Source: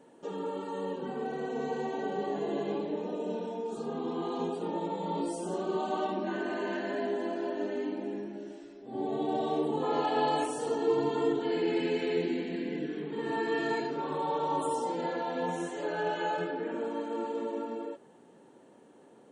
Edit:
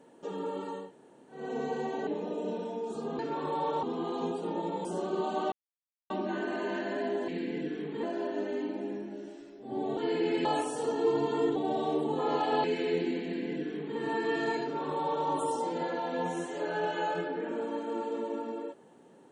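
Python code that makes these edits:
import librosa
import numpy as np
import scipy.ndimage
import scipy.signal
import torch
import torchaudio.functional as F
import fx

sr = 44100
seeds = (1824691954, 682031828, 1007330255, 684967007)

y = fx.edit(x, sr, fx.room_tone_fill(start_s=0.81, length_s=0.59, crossfade_s=0.24),
    fx.cut(start_s=2.07, length_s=0.82),
    fx.cut(start_s=5.03, length_s=0.38),
    fx.insert_silence(at_s=6.08, length_s=0.58),
    fx.swap(start_s=9.2, length_s=1.08, other_s=11.39, other_length_s=0.48),
    fx.duplicate(start_s=12.46, length_s=0.75, to_s=7.26),
    fx.duplicate(start_s=13.86, length_s=0.64, to_s=4.01), tone=tone)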